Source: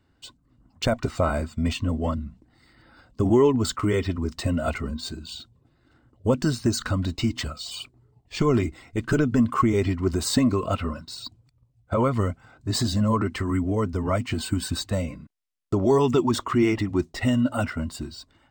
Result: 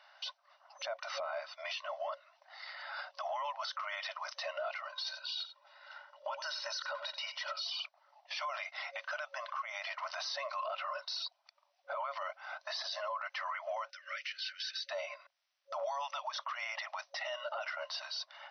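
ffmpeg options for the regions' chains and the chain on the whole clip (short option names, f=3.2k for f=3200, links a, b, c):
-filter_complex "[0:a]asettb=1/sr,asplit=3[a][b][c];[a]atrim=end=4.924[d];[b]atrim=start=4.92:end=7.65,asetpts=PTS-STARTPTS,afade=t=in:d=0.004:c=qsin,afade=t=out:st=2.726:d=0.004:c=qsin,aecho=1:1:2.1:0.63,atrim=end_sample=120393,aecho=1:1:89:0.126,atrim=end_sample=120393[e];[c]atrim=start=7.646[f];[d][e]acrossfade=d=0.004:c1=hsin:c2=qsin[g];[g][f]acrossfade=d=0.004:c1=qsin:c2=hsin,asettb=1/sr,asplit=3[h][i][j];[h]atrim=end=13.904[k];[i]atrim=start=13.9:end=14.9,asetpts=PTS-STARTPTS,afade=t=in:d=0.004:c=qsin,afade=t=out:st=0.996:d=0.004:c=qsin,acompressor=threshold=-28dB:ratio=5:attack=3.2:release=140:knee=1:detection=peak,asuperstop=centerf=820:order=8:qfactor=0.75[l];[j]atrim=start=14.896[m];[k][l]acrossfade=d=0.004:c1=hsin:c2=qsin[n];[n][m]acrossfade=d=0.004:c1=qsin:c2=hsin,afftfilt=real='re*between(b*sr/4096,550,6100)':imag='im*between(b*sr/4096,550,6100)':win_size=4096:overlap=0.75,acompressor=threshold=-50dB:ratio=2.5,alimiter=level_in=19.5dB:limit=-24dB:level=0:latency=1:release=34,volume=-19.5dB,volume=13dB"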